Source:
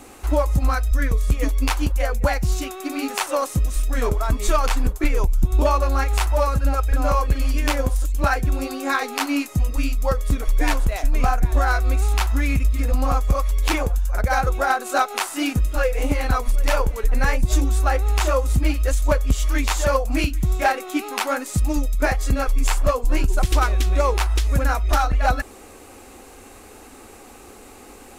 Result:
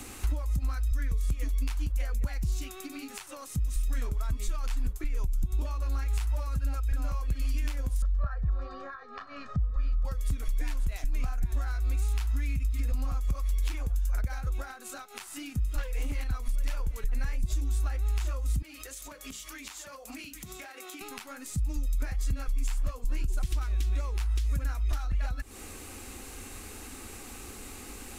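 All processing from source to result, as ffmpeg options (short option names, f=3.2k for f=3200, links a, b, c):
-filter_complex "[0:a]asettb=1/sr,asplit=3[a][b][c];[a]atrim=end=8.024[d];[b]atrim=start=8.02:end=10.05,asetpts=PTS-STARTPTS,afade=t=in:d=0.004:c=qsin,afade=t=out:st=2.026:d=0.004:c=qsin,lowpass=f=4.3k:w=0.5412,lowpass=f=4.3k:w=1.3066,highshelf=f=1.9k:t=q:w=3:g=-8.5,aecho=1:1:1.7:0.96,atrim=end_sample=89523[e];[c]atrim=start=10.046[f];[d][e]acrossfade=d=0.004:c1=hsin:c2=qsin[g];[g][f]acrossfade=d=0.004:c1=qsin:c2=hsin,asettb=1/sr,asplit=3[h][i][j];[h]atrim=end=15.784[k];[i]atrim=start=15.78:end=16.24,asetpts=PTS-STARTPTS,afade=t=in:d=0.004:c=qsin,afade=t=out:st=0.456:d=0.004:c=qsin,equalizer=f=67:w=0.58:g=-7,aeval=exprs='0.316*sin(PI/2*1.78*val(0)/0.316)':c=same[l];[j]atrim=start=16.236[m];[k][l]acrossfade=d=0.004:c1=hsin:c2=qsin[n];[n][m]acrossfade=d=0.004:c1=qsin:c2=hsin,asettb=1/sr,asplit=3[o][p][q];[o]atrim=end=18.624[r];[p]atrim=start=18.62:end=21.01,asetpts=PTS-STARTPTS,afade=t=in:d=0.004:c=qsin,afade=t=out:st=2.386:d=0.004:c=qsin,highpass=310,acompressor=threshold=-35dB:ratio=8:attack=3.2:release=140:knee=1:detection=peak,bandreject=f=60:t=h:w=6,bandreject=f=120:t=h:w=6,bandreject=f=180:t=h:w=6,bandreject=f=240:t=h:w=6,bandreject=f=300:t=h:w=6,bandreject=f=360:t=h:w=6,bandreject=f=420:t=h:w=6,bandreject=f=480:t=h:w=6,bandreject=f=540:t=h:w=6,bandreject=f=600:t=h:w=6[s];[q]atrim=start=21.006[t];[r][s]acrossfade=d=0.004:c1=hsin:c2=qsin[u];[u][t]acrossfade=d=0.004:c1=qsin:c2=hsin,acompressor=threshold=-29dB:ratio=10,equalizer=f=620:t=o:w=2.1:g=-10.5,acrossover=split=170[v][w];[w]acompressor=threshold=-46dB:ratio=4[x];[v][x]amix=inputs=2:normalize=0,volume=4.5dB"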